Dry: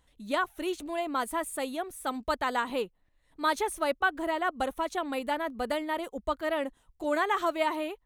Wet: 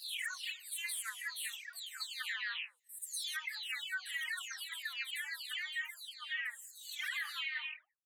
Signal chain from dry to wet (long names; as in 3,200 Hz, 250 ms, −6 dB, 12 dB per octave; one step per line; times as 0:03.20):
every frequency bin delayed by itself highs early, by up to 546 ms
elliptic high-pass filter 1,800 Hz, stop band 80 dB
brickwall limiter −34 dBFS, peak gain reduction 10.5 dB
level +4 dB